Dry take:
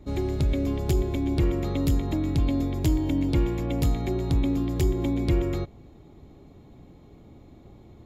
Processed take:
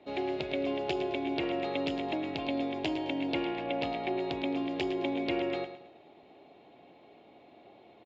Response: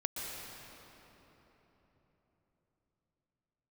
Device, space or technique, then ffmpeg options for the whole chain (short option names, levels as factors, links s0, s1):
phone earpiece: -filter_complex "[0:a]asettb=1/sr,asplit=3[s0][s1][s2];[s0]atrim=end=3.454[s3];[s1]atrim=start=3.45:end=4.17,asetpts=PTS-STARTPTS,afade=t=in:d=0.004:c=qsin,afade=t=out:st=0.716:d=0.004:c=qsin,lowpass=4700[s4];[s2]atrim=start=4.166[s5];[s3][s4]acrossfade=d=0.004:c1=hsin:c2=qsin[s6];[s6][s5]acrossfade=d=0.004:c1=qsin:c2=hsin,highpass=470,equalizer=f=700:t=q:w=4:g=7,equalizer=f=1200:t=q:w=4:g=-6,equalizer=f=2700:t=q:w=4:g=8,lowpass=f=4200:w=0.5412,lowpass=f=4200:w=1.3066,equalizer=f=66:t=o:w=0.77:g=3,aecho=1:1:108|216|324|432:0.282|0.101|0.0365|0.0131,volume=1.12"